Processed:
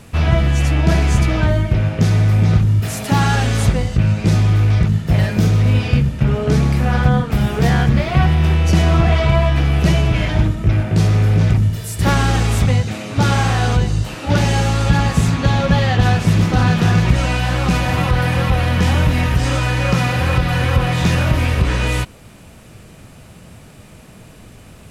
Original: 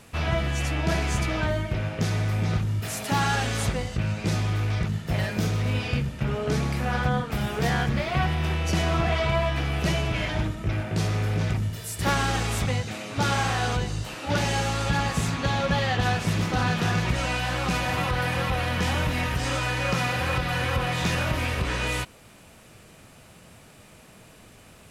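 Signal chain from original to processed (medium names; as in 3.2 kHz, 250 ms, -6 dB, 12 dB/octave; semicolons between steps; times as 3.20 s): bass shelf 300 Hz +8.5 dB; trim +5 dB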